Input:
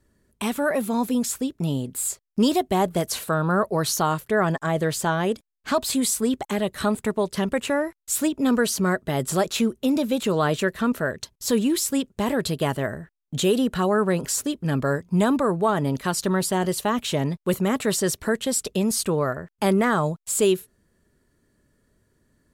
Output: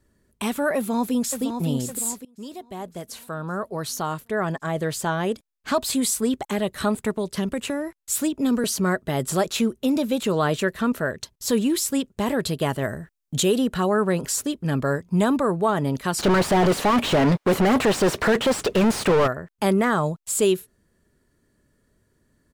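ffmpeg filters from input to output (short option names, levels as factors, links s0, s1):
-filter_complex "[0:a]asplit=2[s0][s1];[s1]afade=t=in:st=0.76:d=0.01,afade=t=out:st=1.42:d=0.01,aecho=0:1:560|1120|1680|2240|2800|3360:0.446684|0.223342|0.111671|0.0558354|0.0279177|0.0139589[s2];[s0][s2]amix=inputs=2:normalize=0,asettb=1/sr,asplit=3[s3][s4][s5];[s3]atrim=end=7.174[s6];[s4]atrim=start=7.17:end=8.64,asetpts=PTS-STARTPTS,afade=t=in:d=0.004:c=qsin,afade=t=out:st=1.466:d=0.004:c=qsin,acrossover=split=420|3000[s7][s8][s9];[s8]acompressor=threshold=0.0282:ratio=6:attack=3.2:release=140:knee=2.83:detection=peak[s10];[s7][s10][s9]amix=inputs=3:normalize=0[s11];[s5]atrim=start=8.636[s12];[s6][s11]acrossfade=d=0.004:c1=hsin:c2=qsin[s13];[s13][s12]acrossfade=d=0.004:c1=qsin:c2=hsin,asettb=1/sr,asplit=3[s14][s15][s16];[s14]atrim=end=12.824[s17];[s15]atrim=start=12.82:end=13.43,asetpts=PTS-STARTPTS,afade=t=in:d=0.004:c=qsin,afade=t=out:st=0.606:d=0.004:c=qsin,bass=f=250:g=2,treble=f=4000:g=6[s18];[s16]atrim=start=13.426[s19];[s17][s18]acrossfade=d=0.004:c1=hsin:c2=qsin[s20];[s20][s19]acrossfade=d=0.004:c1=qsin:c2=hsin,asplit=3[s21][s22][s23];[s21]afade=t=out:st=16.18:d=0.02[s24];[s22]asplit=2[s25][s26];[s26]highpass=f=720:p=1,volume=79.4,asoftclip=type=tanh:threshold=0.299[s27];[s25][s27]amix=inputs=2:normalize=0,lowpass=f=1200:p=1,volume=0.501,afade=t=in:st=16.18:d=0.02,afade=t=out:st=19.26:d=0.02[s28];[s23]afade=t=in:st=19.26:d=0.02[s29];[s24][s28][s29]amix=inputs=3:normalize=0,asplit=2[s30][s31];[s30]atrim=end=2.25,asetpts=PTS-STARTPTS,afade=t=out:st=2.246:d=0.004:c=hsin:silence=0.0707946[s32];[s31]atrim=start=2.25,asetpts=PTS-STARTPTS,afade=t=in:d=3.46:silence=0.0707946[s33];[s32][s33]concat=n=2:v=0:a=1"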